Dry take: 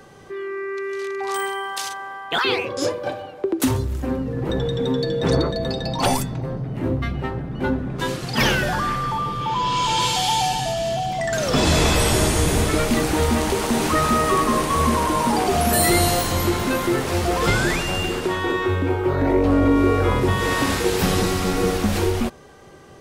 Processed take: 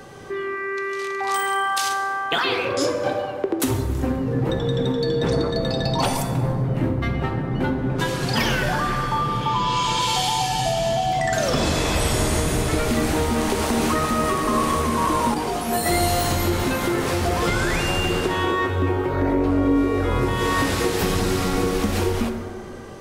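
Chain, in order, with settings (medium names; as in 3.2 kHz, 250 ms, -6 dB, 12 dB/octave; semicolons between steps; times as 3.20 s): compression, threshold -24 dBFS, peak gain reduction 11 dB; plate-style reverb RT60 2.3 s, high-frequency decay 0.4×, DRR 5 dB; 15.34–15.86 s: detune thickener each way 12 cents; trim +4.5 dB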